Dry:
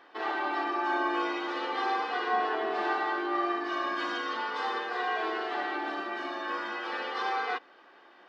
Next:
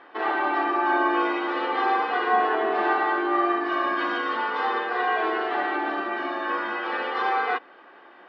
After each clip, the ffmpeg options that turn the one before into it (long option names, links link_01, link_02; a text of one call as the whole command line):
ffmpeg -i in.wav -af "lowpass=2700,volume=7dB" out.wav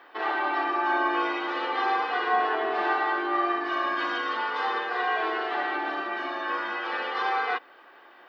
ffmpeg -i in.wav -af "aemphasis=mode=production:type=bsi,volume=-2.5dB" out.wav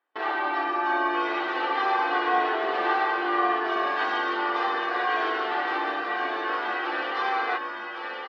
ffmpeg -i in.wav -filter_complex "[0:a]agate=range=-29dB:threshold=-39dB:ratio=16:detection=peak,asplit=2[link_01][link_02];[link_02]aecho=0:1:1112:0.631[link_03];[link_01][link_03]amix=inputs=2:normalize=0" out.wav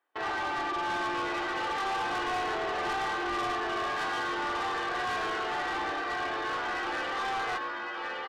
ffmpeg -i in.wav -af "asoftclip=type=tanh:threshold=-28.5dB" out.wav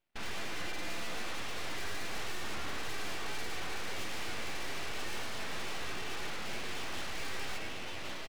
ffmpeg -i in.wav -filter_complex "[0:a]asplit=2[link_01][link_02];[link_02]adelay=220,highpass=300,lowpass=3400,asoftclip=type=hard:threshold=-37dB,volume=-7dB[link_03];[link_01][link_03]amix=inputs=2:normalize=0,aeval=exprs='abs(val(0))':channel_layout=same,volume=-2.5dB" out.wav